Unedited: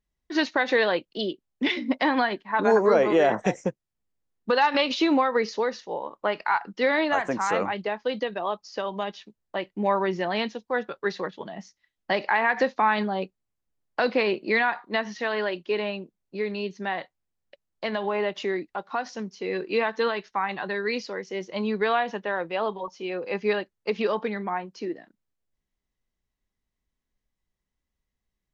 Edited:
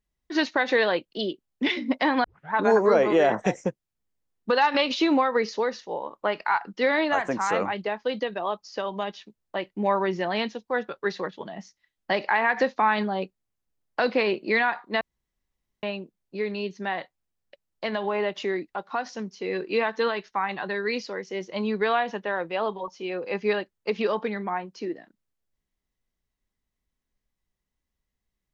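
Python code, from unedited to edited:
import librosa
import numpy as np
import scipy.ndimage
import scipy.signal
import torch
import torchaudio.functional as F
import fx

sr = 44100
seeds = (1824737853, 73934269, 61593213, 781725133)

y = fx.edit(x, sr, fx.tape_start(start_s=2.24, length_s=0.29),
    fx.room_tone_fill(start_s=15.01, length_s=0.82), tone=tone)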